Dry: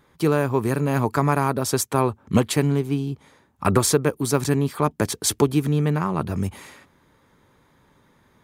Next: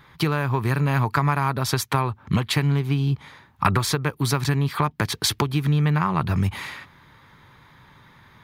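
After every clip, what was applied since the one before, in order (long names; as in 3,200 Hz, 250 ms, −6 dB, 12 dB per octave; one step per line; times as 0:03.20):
downward compressor, threshold −24 dBFS, peak gain reduction 12 dB
graphic EQ with 10 bands 125 Hz +6 dB, 250 Hz −4 dB, 500 Hz −6 dB, 1,000 Hz +4 dB, 2,000 Hz +5 dB, 4,000 Hz +6 dB, 8,000 Hz −8 dB
level +5.5 dB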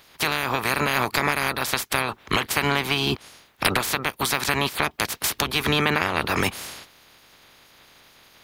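ceiling on every frequency bin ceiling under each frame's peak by 29 dB
level −1.5 dB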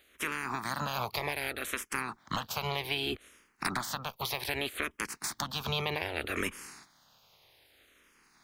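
frequency shifter mixed with the dry sound −0.64 Hz
level −8 dB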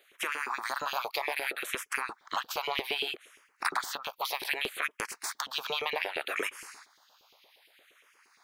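auto-filter high-pass saw up 8.6 Hz 350–3,000 Hz
level −1 dB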